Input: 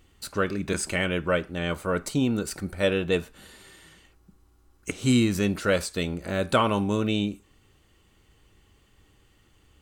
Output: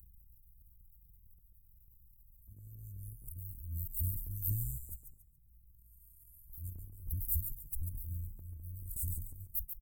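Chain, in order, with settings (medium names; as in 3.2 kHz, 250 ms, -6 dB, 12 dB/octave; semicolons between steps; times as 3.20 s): reverse the whole clip; in parallel at -2 dB: compression 6:1, threshold -32 dBFS, peak gain reduction 15 dB; on the sum: inverse Chebyshev band-stop 330–3700 Hz, stop band 80 dB; gate -49 dBFS, range -37 dB; upward compressor, threshold -51 dBFS; treble shelf 4.2 kHz +8 dB; transient shaper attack -9 dB, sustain +8 dB; on a send: frequency-shifting echo 140 ms, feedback 31%, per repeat -57 Hz, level -7.5 dB; on the sum: trim +10.5 dB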